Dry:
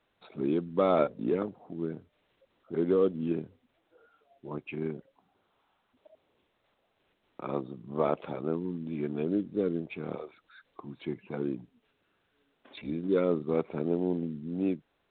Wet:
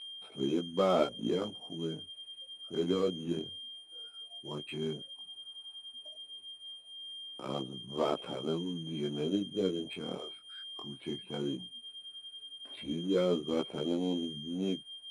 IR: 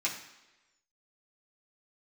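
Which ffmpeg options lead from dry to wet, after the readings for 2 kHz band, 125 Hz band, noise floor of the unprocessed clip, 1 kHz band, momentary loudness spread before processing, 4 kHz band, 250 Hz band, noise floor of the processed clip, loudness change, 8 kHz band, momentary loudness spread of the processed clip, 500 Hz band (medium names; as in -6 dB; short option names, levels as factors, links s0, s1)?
-3.0 dB, -3.0 dB, -75 dBFS, -3.0 dB, 16 LU, +17.5 dB, -3.0 dB, -55 dBFS, -4.5 dB, no reading, 14 LU, -3.5 dB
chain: -af "aeval=exprs='val(0)+0.0141*sin(2*PI*3200*n/s)':c=same,adynamicsmooth=sensitivity=7.5:basefreq=1700,flanger=delay=15:depth=7.8:speed=0.14"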